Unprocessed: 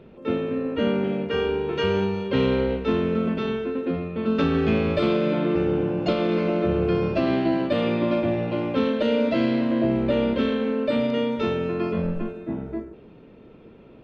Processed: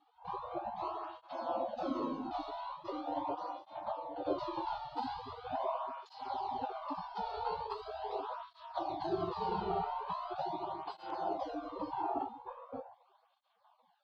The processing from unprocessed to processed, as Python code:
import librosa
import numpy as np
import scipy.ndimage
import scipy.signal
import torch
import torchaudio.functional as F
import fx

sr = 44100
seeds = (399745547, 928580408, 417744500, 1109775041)

y = fx.spec_gate(x, sr, threshold_db=-30, keep='weak')
y = fx.curve_eq(y, sr, hz=(140.0, 270.0, 980.0, 1900.0, 4400.0, 6400.0), db=(0, 14, 3, -29, -18, -28))
y = fx.flanger_cancel(y, sr, hz=0.41, depth_ms=2.0)
y = y * 10.0 ** (15.0 / 20.0)